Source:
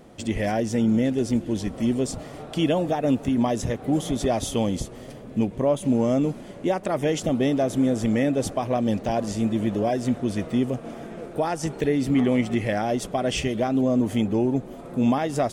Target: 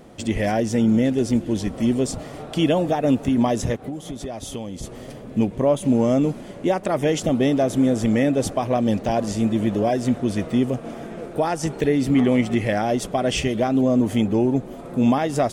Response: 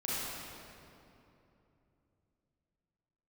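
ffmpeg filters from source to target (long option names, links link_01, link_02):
-filter_complex "[0:a]asplit=3[link_01][link_02][link_03];[link_01]afade=type=out:start_time=3.75:duration=0.02[link_04];[link_02]acompressor=threshold=-31dB:ratio=10,afade=type=in:start_time=3.75:duration=0.02,afade=type=out:start_time=4.82:duration=0.02[link_05];[link_03]afade=type=in:start_time=4.82:duration=0.02[link_06];[link_04][link_05][link_06]amix=inputs=3:normalize=0,volume=3dB"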